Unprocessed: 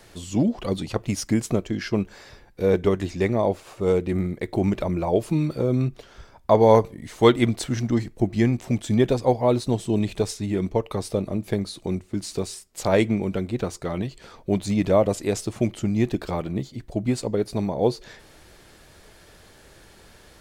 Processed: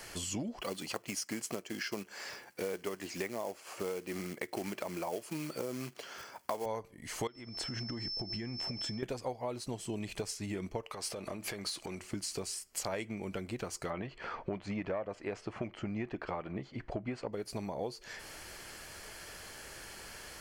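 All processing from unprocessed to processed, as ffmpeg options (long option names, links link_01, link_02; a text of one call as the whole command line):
ffmpeg -i in.wav -filter_complex "[0:a]asettb=1/sr,asplit=3[link_01][link_02][link_03];[link_01]atrim=end=0.614[link_04];[link_02]atrim=start=0.61:end=6.66,asetpts=PTS-STARTPTS,afade=type=in:duration=0.004:curve=qsin,afade=type=out:start_time=6.046:duration=0.004:curve=qsin,acrusher=bits=5:mode=log:mix=0:aa=0.000001,highpass=200[link_05];[link_03]atrim=start=6.656[link_06];[link_04][link_05]acrossfade=duration=0.004:curve1=hsin:curve2=qsin[link_07];[link_07][link_06]acrossfade=duration=0.004:curve1=qsin:curve2=hsin,asettb=1/sr,asplit=3[link_08][link_09][link_10];[link_08]atrim=end=7.274[link_11];[link_09]atrim=start=7.27:end=9.03,asetpts=PTS-STARTPTS,afade=type=in:duration=0.004:curve=qsin,afade=type=out:start_time=1.756:duration=0.004:curve=qsin,aemphasis=mode=reproduction:type=75kf,aeval=exprs='val(0)+0.0126*sin(2*PI*5300*n/s)':channel_layout=same,acompressor=threshold=-27dB:ratio=16:attack=3.2:release=140:knee=1:detection=peak[link_12];[link_10]atrim=start=9.026[link_13];[link_11][link_12]acrossfade=duration=0.004:curve1=hsin:curve2=qsin[link_14];[link_14][link_13]acrossfade=duration=0.004:curve1=qsin:curve2=hsin,asettb=1/sr,asplit=3[link_15][link_16][link_17];[link_15]atrim=end=10.834[link_18];[link_16]atrim=start=10.83:end=12.11,asetpts=PTS-STARTPTS,afade=type=in:duration=0.004:curve=qsin,afade=type=out:start_time=1.276:duration=0.004:curve=qsin,acompressor=threshold=-31dB:ratio=12:attack=3.2:release=140:knee=1:detection=peak,asplit=2[link_19][link_20];[link_20]highpass=frequency=720:poles=1,volume=11dB,asoftclip=type=tanh:threshold=-23.5dB[link_21];[link_19][link_21]amix=inputs=2:normalize=0,lowpass=frequency=7000:poles=1,volume=-6dB[link_22];[link_17]atrim=start=12.106[link_23];[link_18][link_22]acrossfade=duration=0.004:curve1=hsin:curve2=qsin[link_24];[link_24][link_23]acrossfade=duration=0.004:curve1=qsin:curve2=hsin,asettb=1/sr,asplit=3[link_25][link_26][link_27];[link_25]atrim=end=13.904[link_28];[link_26]atrim=start=13.9:end=17.33,asetpts=PTS-STARTPTS,afade=type=in:duration=0.004:curve=qsin,afade=type=out:start_time=3.426:duration=0.004:curve=qsin,lowpass=1900,acontrast=69,lowshelf=frequency=370:gain=-6.5[link_29];[link_27]atrim=start=17.326[link_30];[link_28][link_29]acrossfade=duration=0.004:curve1=hsin:curve2=qsin[link_31];[link_31][link_30]acrossfade=duration=0.004:curve1=qsin:curve2=hsin,tiltshelf=frequency=690:gain=-5.5,bandreject=frequency=3700:width=5.5,acompressor=threshold=-37dB:ratio=6,volume=1dB" out.wav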